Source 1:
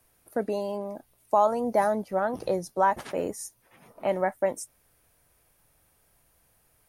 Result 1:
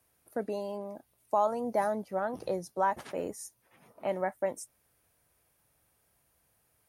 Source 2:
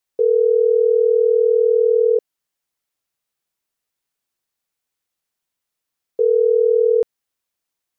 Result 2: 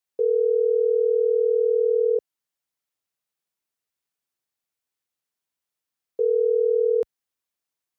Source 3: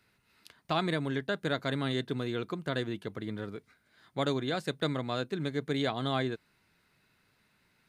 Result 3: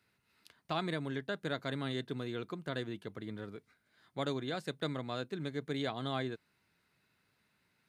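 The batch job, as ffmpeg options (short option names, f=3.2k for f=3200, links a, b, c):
-af "highpass=54,volume=-5.5dB"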